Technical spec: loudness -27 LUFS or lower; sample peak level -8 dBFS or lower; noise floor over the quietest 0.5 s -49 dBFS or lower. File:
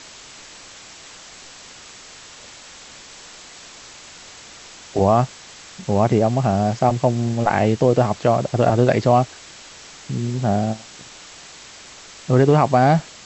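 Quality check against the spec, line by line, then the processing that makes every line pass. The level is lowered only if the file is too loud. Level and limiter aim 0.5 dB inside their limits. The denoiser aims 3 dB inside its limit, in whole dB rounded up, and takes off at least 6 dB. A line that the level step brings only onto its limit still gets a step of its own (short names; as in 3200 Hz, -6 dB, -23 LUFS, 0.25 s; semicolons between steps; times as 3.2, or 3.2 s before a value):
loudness -18.5 LUFS: fail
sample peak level -3.5 dBFS: fail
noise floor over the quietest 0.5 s -42 dBFS: fail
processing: gain -9 dB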